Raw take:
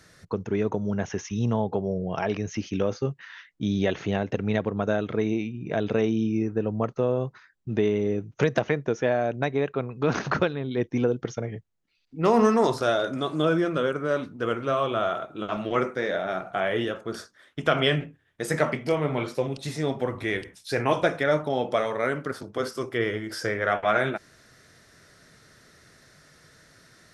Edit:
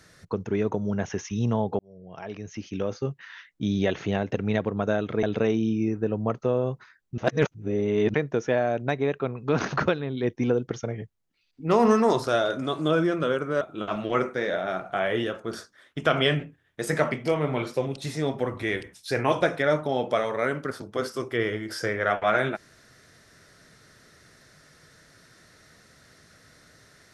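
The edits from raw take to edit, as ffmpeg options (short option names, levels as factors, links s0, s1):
-filter_complex "[0:a]asplit=6[s0][s1][s2][s3][s4][s5];[s0]atrim=end=1.79,asetpts=PTS-STARTPTS,afade=t=out:st=1.786:d=0.004:c=hsin[s6];[s1]atrim=start=1.79:end=5.232,asetpts=PTS-STARTPTS,afade=t=in:d=1.54[s7];[s2]atrim=start=5.768:end=7.722[s8];[s3]atrim=start=7.718:end=8.682,asetpts=PTS-STARTPTS,areverse[s9];[s4]atrim=start=8.678:end=14.152[s10];[s5]atrim=start=15.218[s11];[s6][s7]concat=n=2:v=0:a=1[s12];[s12][s8]acrossfade=d=0.004:c1=hsin:c2=hsin[s13];[s13][s9]acrossfade=d=0.004:c1=hsin:c2=hsin[s14];[s14][s10]acrossfade=d=0.004:c1=hsin:c2=hsin[s15];[s15][s11]acrossfade=d=0.004:c1=hsin:c2=hsin"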